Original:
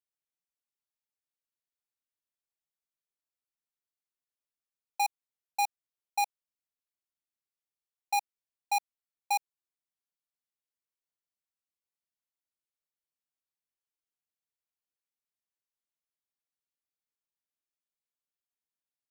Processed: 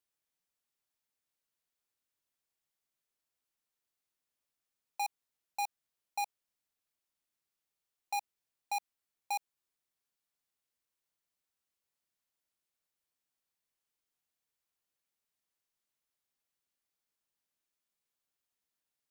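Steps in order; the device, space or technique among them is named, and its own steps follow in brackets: soft clipper into limiter (saturation -29.5 dBFS, distortion -24 dB; peak limiter -37 dBFS, peak gain reduction 7 dB); trim +5 dB

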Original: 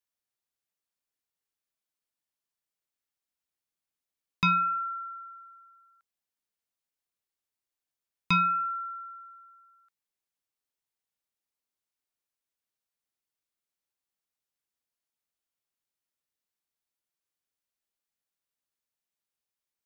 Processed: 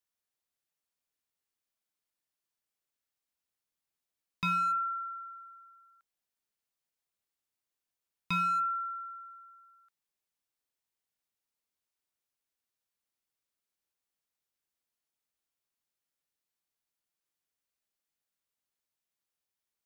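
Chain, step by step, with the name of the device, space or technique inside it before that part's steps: limiter into clipper (peak limiter -25.5 dBFS, peak gain reduction 7.5 dB; hard clipper -26.5 dBFS, distortion -28 dB)

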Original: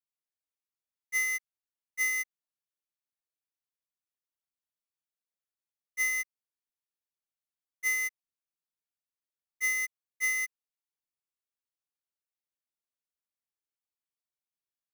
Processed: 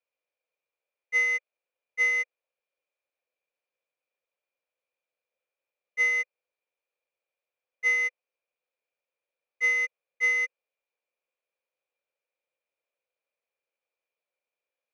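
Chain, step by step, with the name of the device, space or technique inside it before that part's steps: tin-can telephone (band-pass 430–3100 Hz; small resonant body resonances 520/2400 Hz, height 17 dB, ringing for 25 ms); trim +5 dB

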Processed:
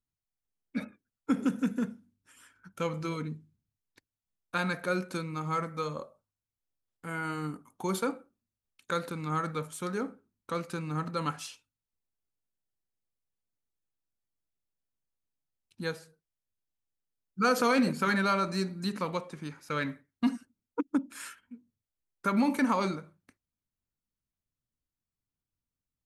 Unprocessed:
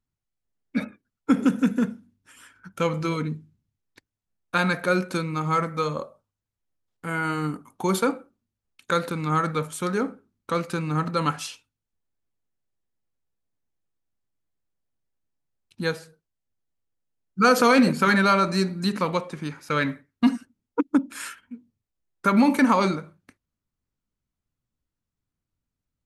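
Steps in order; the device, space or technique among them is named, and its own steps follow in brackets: exciter from parts (in parallel at -10 dB: high-pass 3.9 kHz + saturation -39 dBFS, distortion -6 dB); on the sum: trim -8 dB

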